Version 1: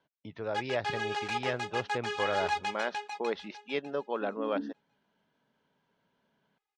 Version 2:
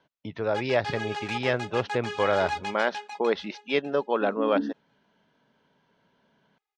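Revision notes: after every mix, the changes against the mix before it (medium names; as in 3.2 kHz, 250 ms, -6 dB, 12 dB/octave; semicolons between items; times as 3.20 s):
speech +8.0 dB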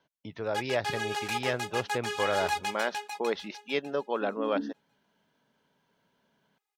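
speech -5.5 dB; master: remove distance through air 100 m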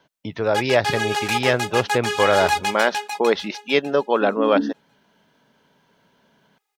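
speech +11.5 dB; background +9.5 dB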